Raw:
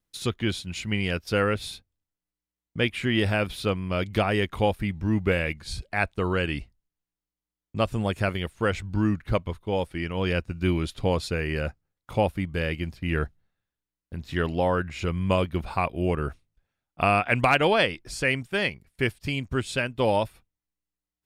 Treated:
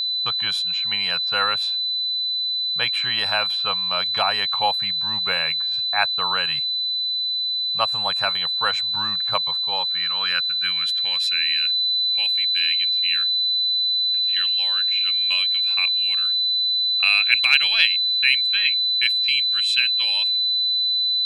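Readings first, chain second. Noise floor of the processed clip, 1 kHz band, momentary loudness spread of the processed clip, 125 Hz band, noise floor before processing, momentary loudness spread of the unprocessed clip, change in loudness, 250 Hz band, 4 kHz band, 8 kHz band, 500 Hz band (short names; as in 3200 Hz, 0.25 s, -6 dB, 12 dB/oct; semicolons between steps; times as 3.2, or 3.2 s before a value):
-24 dBFS, +1.0 dB, 5 LU, under -15 dB, under -85 dBFS, 8 LU, +8.5 dB, under -15 dB, +20.5 dB, n/a, -10.0 dB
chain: resonant low shelf 210 Hz +13.5 dB, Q 3; low-pass opened by the level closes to 410 Hz, open at -11.5 dBFS; notch 2000 Hz, Q 11; whine 4000 Hz -24 dBFS; high-pass sweep 910 Hz -> 2500 Hz, 9.48–11.7; gain +2.5 dB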